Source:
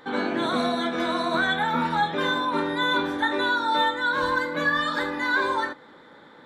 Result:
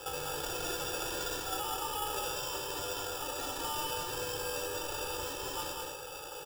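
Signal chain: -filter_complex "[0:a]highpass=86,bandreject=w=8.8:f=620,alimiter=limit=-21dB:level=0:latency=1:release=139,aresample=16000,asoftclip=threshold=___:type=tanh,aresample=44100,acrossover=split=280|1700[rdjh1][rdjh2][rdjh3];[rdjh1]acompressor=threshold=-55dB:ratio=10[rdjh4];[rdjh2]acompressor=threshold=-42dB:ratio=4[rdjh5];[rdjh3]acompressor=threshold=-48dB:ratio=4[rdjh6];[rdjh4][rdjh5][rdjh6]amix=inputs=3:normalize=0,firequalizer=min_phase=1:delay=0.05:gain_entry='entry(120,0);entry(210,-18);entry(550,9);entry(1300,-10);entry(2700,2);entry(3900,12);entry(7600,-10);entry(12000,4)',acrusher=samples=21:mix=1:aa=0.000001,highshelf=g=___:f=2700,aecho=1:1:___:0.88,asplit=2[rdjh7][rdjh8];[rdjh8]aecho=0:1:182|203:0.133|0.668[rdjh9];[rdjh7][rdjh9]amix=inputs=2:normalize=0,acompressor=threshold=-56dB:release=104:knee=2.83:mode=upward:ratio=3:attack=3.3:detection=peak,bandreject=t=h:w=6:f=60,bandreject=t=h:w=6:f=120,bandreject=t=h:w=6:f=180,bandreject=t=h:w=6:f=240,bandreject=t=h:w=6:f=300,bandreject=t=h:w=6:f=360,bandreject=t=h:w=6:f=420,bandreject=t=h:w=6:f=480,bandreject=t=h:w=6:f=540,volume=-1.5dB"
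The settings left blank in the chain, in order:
-38.5dB, 10, 2.3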